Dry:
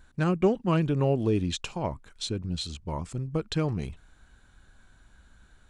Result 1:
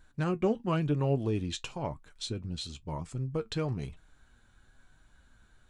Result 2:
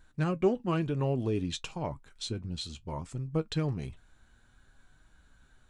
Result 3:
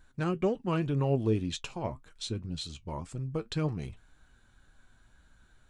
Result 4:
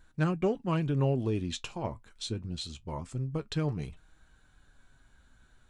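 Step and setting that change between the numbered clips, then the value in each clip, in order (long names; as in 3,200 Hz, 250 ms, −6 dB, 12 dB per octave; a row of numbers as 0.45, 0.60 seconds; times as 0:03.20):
flanger, speed: 1, 0.59, 1.9, 0.24 Hertz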